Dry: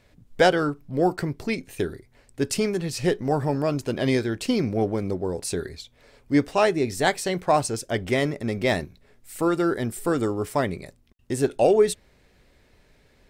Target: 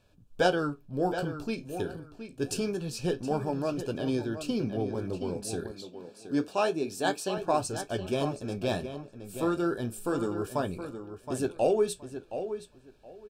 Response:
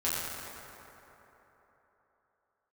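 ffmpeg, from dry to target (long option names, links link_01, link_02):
-filter_complex "[0:a]flanger=delay=10:depth=8.6:regen=-54:speed=0.27:shape=sinusoidal,asuperstop=centerf=2000:order=8:qfactor=3.7,asplit=2[link_01][link_02];[link_02]adelay=720,lowpass=frequency=3800:poles=1,volume=-9.5dB,asplit=2[link_03][link_04];[link_04]adelay=720,lowpass=frequency=3800:poles=1,volume=0.19,asplit=2[link_05][link_06];[link_06]adelay=720,lowpass=frequency=3800:poles=1,volume=0.19[link_07];[link_01][link_03][link_05][link_07]amix=inputs=4:normalize=0,asettb=1/sr,asplit=3[link_08][link_09][link_10];[link_08]atrim=end=3.974[link_11];[link_09]atrim=start=3.97:end=4.95,asetpts=PTS-STARTPTS,afade=type=in:duration=0.004:curve=qsin,afade=type=out:start_time=0.976:duration=0.004:curve=qsin,acrossover=split=420[link_12][link_13];[link_13]acompressor=threshold=-33dB:ratio=6[link_14];[link_12][link_14]amix=inputs=2:normalize=0[link_15];[link_10]atrim=start=4.946[link_16];[link_11][link_15]acrossfade=duration=0.004:curve1=hsin:curve2=qsin[link_17];[link_17][link_16]acrossfade=duration=0.004:curve1=qsin:curve2=hsin,asettb=1/sr,asplit=3[link_18][link_19][link_20];[link_18]atrim=end=5.714[link_21];[link_19]atrim=start=5.71:end=7.38,asetpts=PTS-STARTPTS,afade=type=in:duration=0.004:curve=qsin,afade=type=out:start_time=1.666:duration=0.004:curve=qsin,highpass=180[link_22];[link_20]atrim=start=7.376[link_23];[link_21][link_22]acrossfade=duration=0.004:curve1=hsin:curve2=qsin[link_24];[link_24][link_23]acrossfade=duration=0.004:curve1=qsin:curve2=hsin,volume=-2.5dB"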